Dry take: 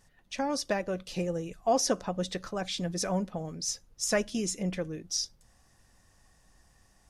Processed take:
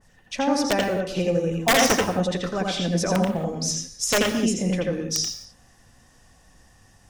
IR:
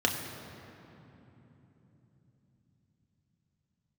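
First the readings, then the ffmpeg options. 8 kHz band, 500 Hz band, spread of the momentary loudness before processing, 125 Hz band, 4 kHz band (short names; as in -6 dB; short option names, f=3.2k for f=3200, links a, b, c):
+7.0 dB, +8.0 dB, 7 LU, +9.5 dB, +9.0 dB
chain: -filter_complex "[0:a]aeval=exprs='(mod(8.41*val(0)+1,2)-1)/8.41':c=same,asplit=2[a][b];[1:a]atrim=start_sample=2205,afade=t=out:st=0.25:d=0.01,atrim=end_sample=11466,adelay=83[c];[b][c]afir=irnorm=-1:irlink=0,volume=-10.5dB[d];[a][d]amix=inputs=2:normalize=0,adynamicequalizer=threshold=0.00794:dfrequency=2700:dqfactor=0.7:tfrequency=2700:tqfactor=0.7:attack=5:release=100:ratio=0.375:range=2.5:mode=cutabove:tftype=highshelf,volume=6dB"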